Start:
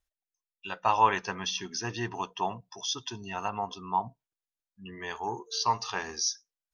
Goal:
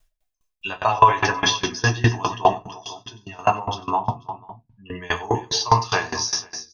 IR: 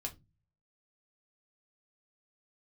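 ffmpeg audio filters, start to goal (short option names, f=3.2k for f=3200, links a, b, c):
-filter_complex "[0:a]asettb=1/sr,asplit=3[a][b][c];[a]atrim=end=0.914[d];[b]atrim=start=0.91:end=1.54,asetpts=PTS-STARTPTS,afade=t=in:d=0.004:c=qsin,afade=t=out:st=0.626:d=0.004:c=qsin,aecho=1:1:7.2:0.74,atrim=end_sample=27783[e];[c]atrim=start=1.536[f];[d][e]acrossfade=d=0.004:c1=hsin:c2=qsin[g];[g][f]acrossfade=d=0.004:c1=qsin:c2=hsin,asettb=1/sr,asplit=3[h][i][j];[h]atrim=end=2.524[k];[i]atrim=start=2.52:end=3.39,asetpts=PTS-STARTPTS,afade=t=in:d=0.004:c=qsin,afade=t=out:st=0.866:d=0.004:c=qsin,acompressor=threshold=-49dB:ratio=8[l];[j]atrim=start=3.386[m];[k][l]acrossfade=d=0.004:c1=hsin:c2=qsin[n];[n][m]acrossfade=d=0.004:c1=qsin:c2=hsin,asettb=1/sr,asplit=3[o][p][q];[o]atrim=end=4.024[r];[p]atrim=start=4.02:end=4.85,asetpts=PTS-STARTPTS,afade=t=in:d=0.004:c=qsin,afade=t=out:st=0.826:d=0.004:c=qsin,lowpass=2.7k[s];[q]atrim=start=4.846[t];[r][s]acrossfade=d=0.004:c1=hsin:c2=qsin[u];[u][t]acrossfade=d=0.004:c1=qsin:c2=hsin,aecho=1:1:94|328|490:0.335|0.158|0.126[v];[1:a]atrim=start_sample=2205[w];[v][w]afir=irnorm=-1:irlink=0,alimiter=level_in=18.5dB:limit=-1dB:release=50:level=0:latency=1,aeval=exprs='val(0)*pow(10,-22*if(lt(mod(4.9*n/s,1),2*abs(4.9)/1000),1-mod(4.9*n/s,1)/(2*abs(4.9)/1000),(mod(4.9*n/s,1)-2*abs(4.9)/1000)/(1-2*abs(4.9)/1000))/20)':c=same"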